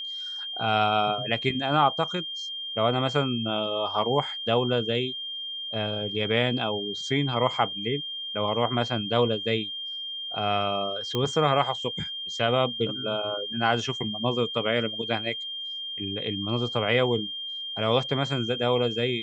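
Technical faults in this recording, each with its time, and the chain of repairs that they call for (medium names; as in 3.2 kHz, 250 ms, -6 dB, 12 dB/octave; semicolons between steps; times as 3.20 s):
whine 3.2 kHz -32 dBFS
11.15 s: pop -14 dBFS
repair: de-click; band-stop 3.2 kHz, Q 30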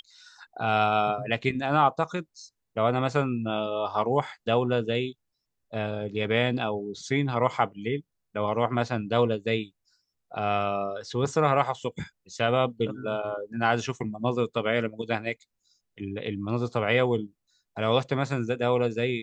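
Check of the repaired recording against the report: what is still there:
nothing left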